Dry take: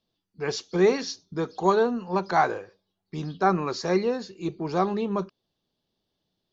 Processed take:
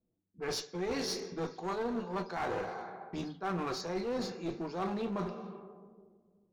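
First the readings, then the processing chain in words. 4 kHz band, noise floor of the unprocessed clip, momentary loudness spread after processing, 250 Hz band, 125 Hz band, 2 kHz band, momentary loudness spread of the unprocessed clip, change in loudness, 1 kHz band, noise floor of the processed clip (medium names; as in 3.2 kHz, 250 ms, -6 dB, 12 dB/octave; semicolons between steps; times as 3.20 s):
-4.5 dB, -81 dBFS, 8 LU, -9.0 dB, -9.5 dB, -10.0 dB, 12 LU, -11.0 dB, -12.0 dB, -80 dBFS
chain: two-slope reverb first 0.22 s, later 2.3 s, from -19 dB, DRR 4 dB; reverse; compression 12:1, threshold -30 dBFS, peak gain reduction 16 dB; reverse; level-controlled noise filter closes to 430 Hz, open at -34.5 dBFS; one-sided clip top -36 dBFS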